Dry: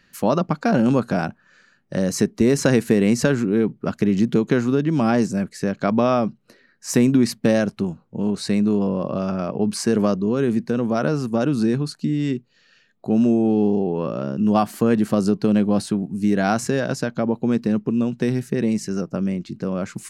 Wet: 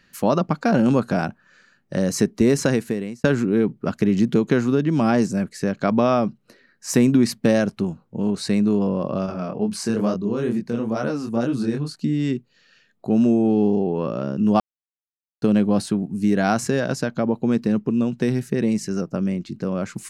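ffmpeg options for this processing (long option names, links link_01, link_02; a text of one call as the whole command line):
ffmpeg -i in.wav -filter_complex "[0:a]asettb=1/sr,asplit=3[link_01][link_02][link_03];[link_01]atrim=end=9.264[link_04];[link_02]atrim=start=9.26:end=11.96,asetpts=PTS-STARTPTS,afade=type=in:duration=0.004:curve=qsin,afade=type=out:start_time=2.696:duration=0.004:curve=qsin,flanger=delay=22.5:depth=5:speed=2.2[link_05];[link_03]atrim=start=11.956[link_06];[link_04][link_05]acrossfade=duration=0.004:curve1=hsin:curve2=qsin[link_07];[link_07][link_06]acrossfade=duration=0.004:curve1=qsin:curve2=hsin,asplit=4[link_08][link_09][link_10][link_11];[link_08]atrim=end=3.24,asetpts=PTS-STARTPTS,afade=type=out:start_time=2.5:duration=0.74[link_12];[link_09]atrim=start=3.24:end=14.6,asetpts=PTS-STARTPTS,afade=type=in:duration=0.004:curve=hsin,afade=type=out:start_time=11.356:duration=0.004:curve=hsin[link_13];[link_10]atrim=start=14.6:end=15.42,asetpts=PTS-STARTPTS,volume=0[link_14];[link_11]atrim=start=15.42,asetpts=PTS-STARTPTS,afade=type=in:duration=0.004:curve=hsin[link_15];[link_12][link_13][link_14][link_15]concat=n=4:v=0:a=1" out.wav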